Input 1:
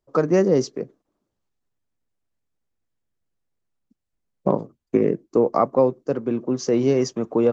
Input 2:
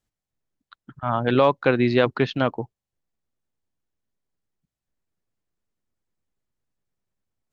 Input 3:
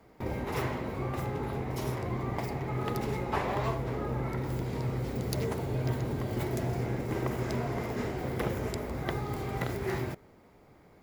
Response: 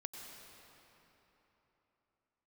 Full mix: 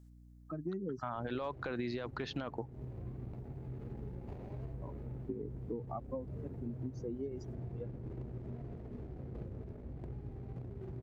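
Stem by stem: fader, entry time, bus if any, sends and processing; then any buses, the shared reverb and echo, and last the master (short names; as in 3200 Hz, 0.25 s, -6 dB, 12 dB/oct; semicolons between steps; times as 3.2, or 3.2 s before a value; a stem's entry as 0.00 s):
-14.5 dB, 0.35 s, bus A, no send, per-bin expansion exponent 2; tape flanging out of phase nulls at 0.34 Hz, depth 2.4 ms
+0.5 dB, 0.00 s, bus A, no send, tilt +4.5 dB/oct
-18.0 dB, 0.95 s, no bus, no send, median filter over 41 samples
bus A: 0.0 dB, bell 2800 Hz -5.5 dB 1.1 oct; limiter -20 dBFS, peak gain reduction 14.5 dB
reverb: off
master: tilt -3 dB/oct; hum 60 Hz, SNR 21 dB; compressor 3:1, threshold -38 dBFS, peak gain reduction 11.5 dB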